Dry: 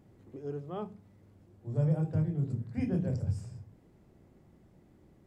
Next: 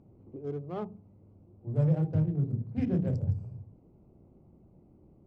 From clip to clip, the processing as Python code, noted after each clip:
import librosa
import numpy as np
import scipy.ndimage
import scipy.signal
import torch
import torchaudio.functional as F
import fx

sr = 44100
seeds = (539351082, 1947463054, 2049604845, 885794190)

y = fx.wiener(x, sr, points=25)
y = fx.air_absorb(y, sr, metres=60.0)
y = y * 10.0 ** (2.5 / 20.0)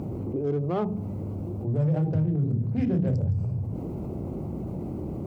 y = scipy.signal.sosfilt(scipy.signal.butter(2, 55.0, 'highpass', fs=sr, output='sos'), x)
y = fx.env_flatten(y, sr, amount_pct=70)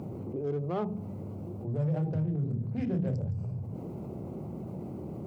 y = scipy.signal.sosfilt(scipy.signal.butter(2, 110.0, 'highpass', fs=sr, output='sos'), x)
y = fx.peak_eq(y, sr, hz=290.0, db=-4.0, octaves=0.51)
y = y * 10.0 ** (-4.0 / 20.0)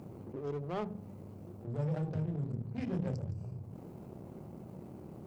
y = fx.high_shelf(x, sr, hz=2200.0, db=7.5)
y = fx.power_curve(y, sr, exponent=1.4)
y = y * 10.0 ** (-3.0 / 20.0)